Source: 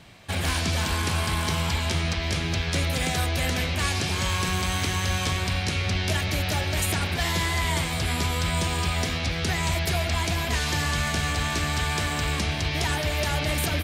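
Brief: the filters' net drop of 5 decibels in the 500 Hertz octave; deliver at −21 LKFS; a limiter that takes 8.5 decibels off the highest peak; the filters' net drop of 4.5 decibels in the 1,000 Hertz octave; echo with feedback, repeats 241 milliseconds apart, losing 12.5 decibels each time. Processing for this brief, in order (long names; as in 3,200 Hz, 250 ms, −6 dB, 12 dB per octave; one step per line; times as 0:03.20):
parametric band 500 Hz −5.5 dB
parametric band 1,000 Hz −4 dB
brickwall limiter −22 dBFS
repeating echo 241 ms, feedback 24%, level −12.5 dB
level +9 dB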